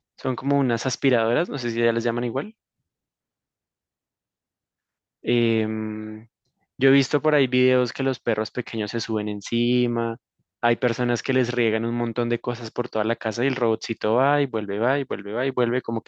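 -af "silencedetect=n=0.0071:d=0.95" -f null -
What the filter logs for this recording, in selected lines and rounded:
silence_start: 2.51
silence_end: 5.24 | silence_duration: 2.74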